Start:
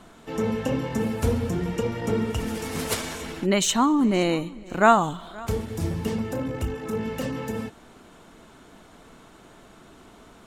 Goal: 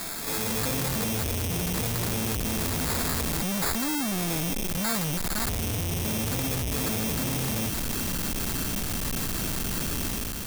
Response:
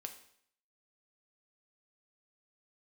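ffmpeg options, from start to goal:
-af "asubboost=boost=6:cutoff=220,acrusher=samples=15:mix=1:aa=0.000001,acontrast=82,alimiter=limit=0.1:level=0:latency=1:release=83,asoftclip=type=hard:threshold=0.0168,dynaudnorm=f=120:g=7:m=2.11,crystalizer=i=8.5:c=0,asoftclip=type=tanh:threshold=0.211"

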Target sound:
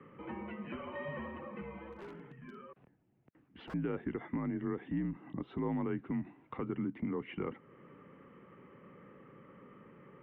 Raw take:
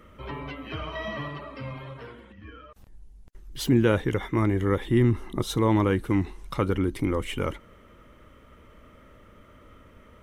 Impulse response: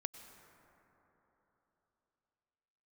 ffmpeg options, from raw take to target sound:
-filter_complex "[0:a]acrossover=split=540[s0][s1];[s0]acontrast=57[s2];[s2][s1]amix=inputs=2:normalize=0,alimiter=limit=0.251:level=0:latency=1:release=175,acompressor=threshold=0.01:ratio=1.5,highpass=f=210:t=q:w=0.5412,highpass=f=210:t=q:w=1.307,lowpass=f=2700:t=q:w=0.5176,lowpass=f=2700:t=q:w=0.7071,lowpass=f=2700:t=q:w=1.932,afreqshift=-66,asettb=1/sr,asplit=3[s3][s4][s5];[s3]atrim=end=1.924[s6];[s4]atrim=start=1.92:end=3.74,asetpts=PTS-STARTPTS,afade=t=in:d=0.004:c=qsin,afade=t=out:st=1.816:d=0.004:c=qsin,aeval=exprs='0.0141*(abs(mod(val(0)/0.0141+3,4)-2)-1)':c=same[s7];[s5]atrim=start=3.736[s8];[s6][s7]acrossfade=d=0.004:c1=hsin:c2=qsin[s9];[s9][s8]acrossfade=d=0.004:c1=qsin:c2=hsin,volume=0.596"

